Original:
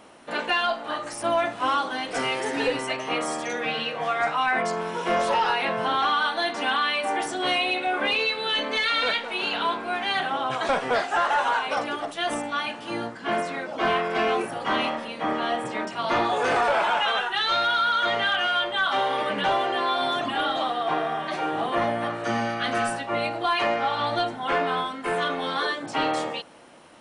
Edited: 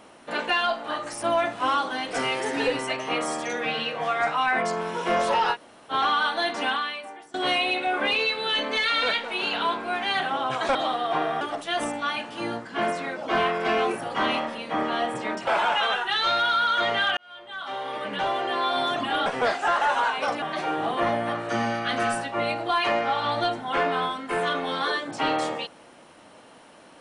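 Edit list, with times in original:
5.54–5.92 room tone, crossfade 0.06 s
6.65–7.34 fade out quadratic, to -22 dB
10.75–11.91 swap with 20.51–21.17
15.97–16.72 cut
18.42–20.01 fade in

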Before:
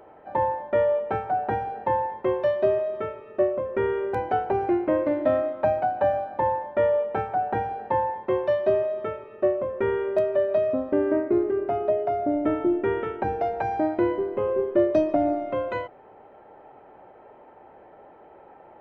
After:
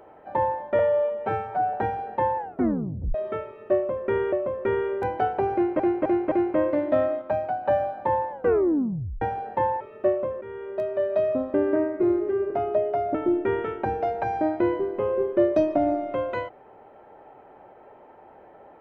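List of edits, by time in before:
0.79–1.42 stretch 1.5×
2.06 tape stop 0.77 s
3.44–4.01 loop, 2 plays
4.65–4.91 loop, 4 plays
5.55–5.99 gain -3.5 dB
6.64 tape stop 0.91 s
8.14–9.19 cut
9.8–10.63 fade in, from -18 dB
11.14–11.64 stretch 1.5×
12.28–12.53 cut

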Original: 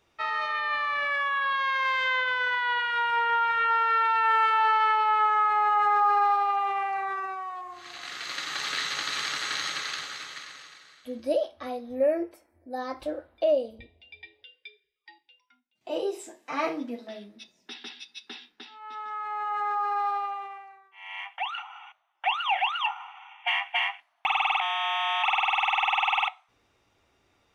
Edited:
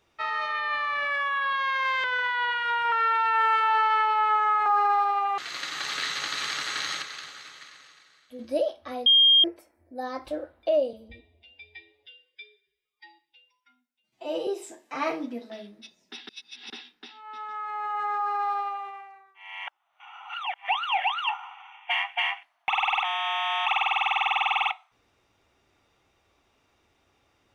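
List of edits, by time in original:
2.04–2.32 cut
3.2–3.82 cut
5.56–5.98 cut
6.7–8.13 cut
9.77–11.14 gain -6 dB
11.81–12.19 bleep 3220 Hz -14 dBFS
13.68–16.04 stretch 1.5×
17.86–18.27 reverse
21.24–22.25 reverse

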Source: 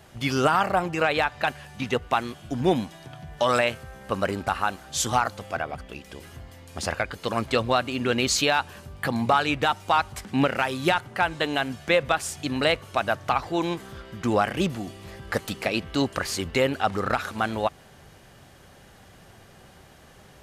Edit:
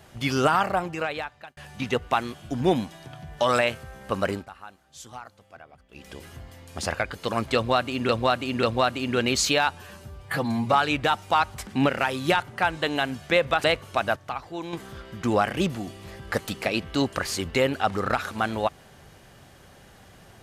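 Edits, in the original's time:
0.55–1.57 fade out
4.34–6.04 dip -18 dB, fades 0.13 s
7.55–8.09 loop, 3 plays
8.63–9.31 stretch 1.5×
12.22–12.64 cut
13.16–13.73 gain -8.5 dB

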